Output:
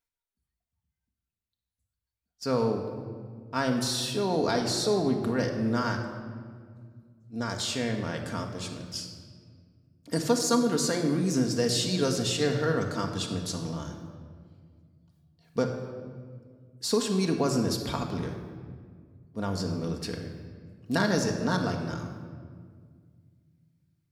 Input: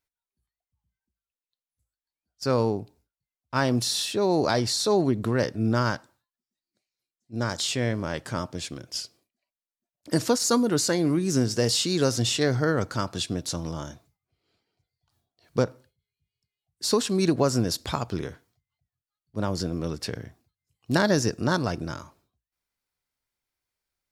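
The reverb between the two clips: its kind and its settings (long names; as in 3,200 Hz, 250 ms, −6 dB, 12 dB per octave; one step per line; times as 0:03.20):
rectangular room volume 2,900 cubic metres, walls mixed, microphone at 1.7 metres
level −5 dB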